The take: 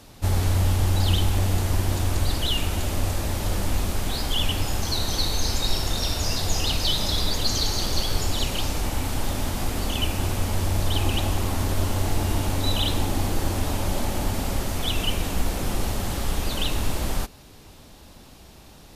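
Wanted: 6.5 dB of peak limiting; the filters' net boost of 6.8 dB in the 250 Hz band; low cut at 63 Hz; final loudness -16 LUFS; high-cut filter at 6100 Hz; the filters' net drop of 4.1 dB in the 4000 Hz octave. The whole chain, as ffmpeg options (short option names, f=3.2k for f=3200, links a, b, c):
-af "highpass=63,lowpass=6.1k,equalizer=f=250:t=o:g=8.5,equalizer=f=4k:t=o:g=-4.5,volume=11dB,alimiter=limit=-6dB:level=0:latency=1"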